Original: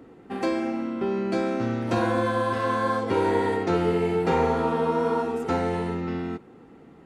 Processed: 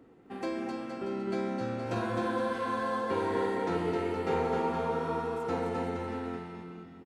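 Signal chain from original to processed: bouncing-ball echo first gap 0.26 s, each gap 0.8×, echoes 5; gain -9 dB

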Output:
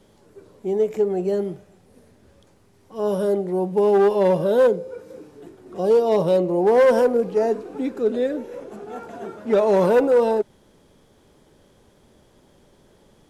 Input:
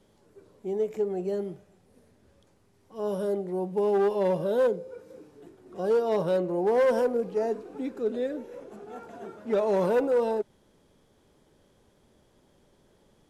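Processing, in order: 5.78–6.61 bell 1500 Hz -10.5 dB 0.47 oct; gain +7.5 dB

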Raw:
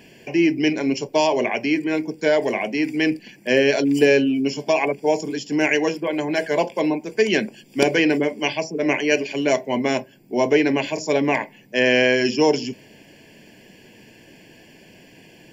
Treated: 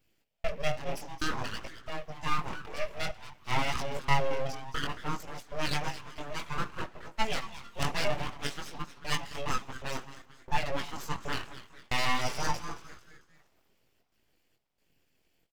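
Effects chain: per-bin expansion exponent 1.5; step gate "xx..xxxxxx.xx" 136 bpm -60 dB; frequency-shifting echo 0.223 s, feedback 41%, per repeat +130 Hz, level -13.5 dB; chorus 0.56 Hz, delay 18 ms, depth 5 ms; on a send at -15 dB: reverb, pre-delay 3 ms; on the sum: full-wave rectifier; gain -3.5 dB

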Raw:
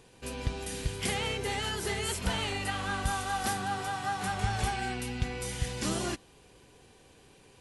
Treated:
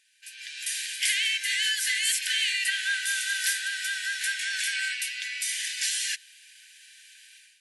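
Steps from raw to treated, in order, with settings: AGC gain up to 15 dB; in parallel at -3 dB: limiter -11 dBFS, peak gain reduction 7.5 dB; on the sum: brick-wall FIR high-pass 1500 Hz; gain -8 dB

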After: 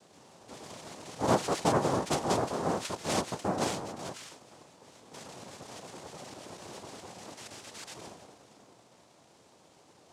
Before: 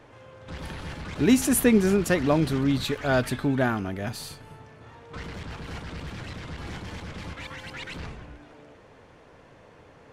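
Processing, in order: noise vocoder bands 2; gain -7.5 dB

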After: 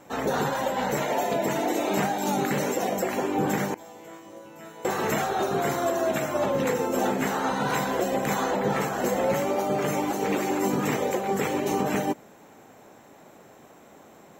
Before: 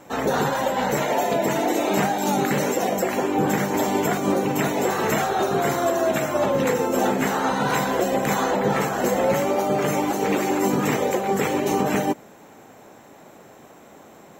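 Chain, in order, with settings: 3.74–4.85 resonator bank A2 fifth, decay 0.73 s; gain -4 dB

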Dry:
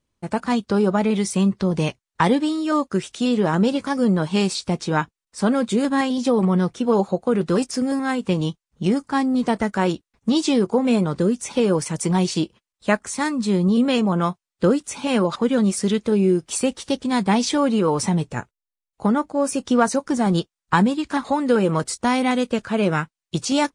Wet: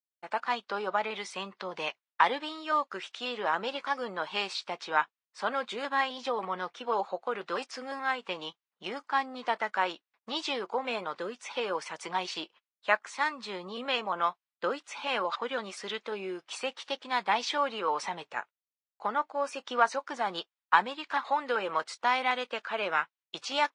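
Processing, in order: expander -47 dBFS; Butterworth band-pass 1700 Hz, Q 0.56; gain -2.5 dB

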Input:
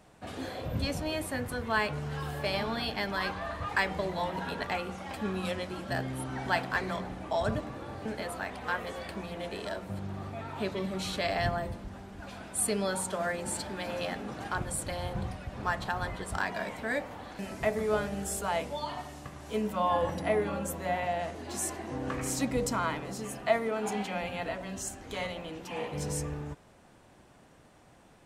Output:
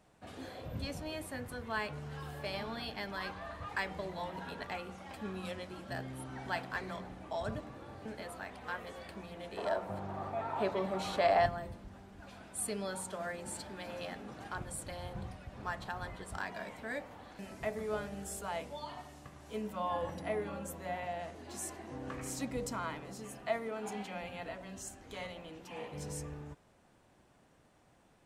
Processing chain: 9.57–11.46 bell 800 Hz +14 dB 2.1 oct; gain -8 dB

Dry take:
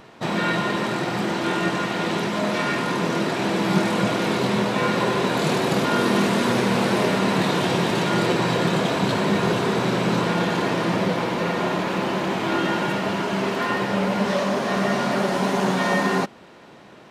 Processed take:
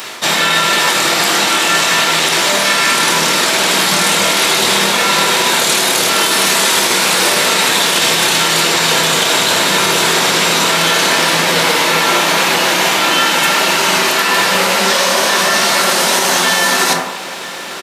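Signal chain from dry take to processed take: HPF 110 Hz; pre-emphasis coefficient 0.97; notches 60/120/180 Hz; reverse; compressor 5:1, threshold -45 dBFS, peak gain reduction 12 dB; reverse; outdoor echo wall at 160 m, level -16 dB; reverb RT60 0.95 s, pre-delay 12 ms, DRR 2 dB; speed mistake 25 fps video run at 24 fps; maximiser +34.5 dB; gain -1 dB

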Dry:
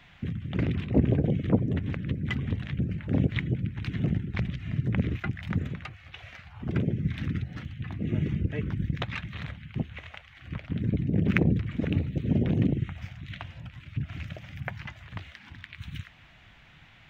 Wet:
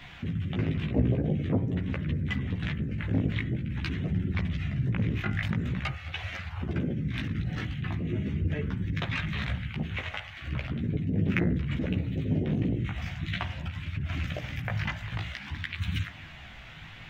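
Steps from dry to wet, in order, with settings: in parallel at +2 dB: negative-ratio compressor -38 dBFS, ratio -1; on the sum: chorus voices 2, 0.47 Hz, delay 15 ms, depth 4.2 ms; de-hum 56.38 Hz, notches 37

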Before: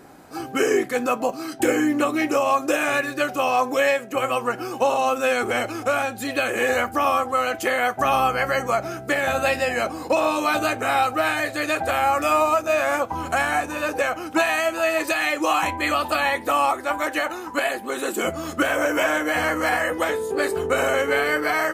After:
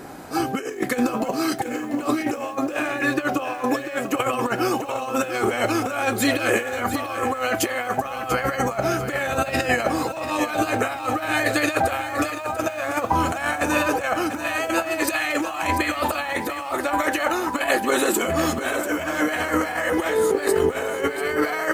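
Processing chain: negative-ratio compressor -26 dBFS, ratio -0.5; 2.55–3.64 bell 12000 Hz -7 dB 2.3 oct; lo-fi delay 0.691 s, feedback 35%, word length 8-bit, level -10 dB; gain +3.5 dB

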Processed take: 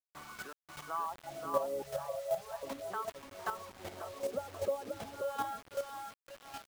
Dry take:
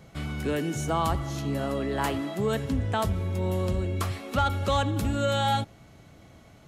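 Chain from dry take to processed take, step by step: 3.39–4 delta modulation 64 kbps, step -31 dBFS; compressor 16:1, threshold -28 dBFS, peak gain reduction 9.5 dB; wah 0.39 Hz 490–1300 Hz, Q 3.9; 0.53–0.94 fade in; feedback echo 0.532 s, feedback 37%, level -4 dB; dynamic EQ 610 Hz, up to +3 dB, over -54 dBFS, Q 5.8; reverb removal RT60 0.92 s; bit-crush 9-bit; chopper 2.6 Hz, depth 60%, duty 10%; 1.82–2.63 Chebyshev band-stop 170–530 Hz, order 3; gain +10.5 dB

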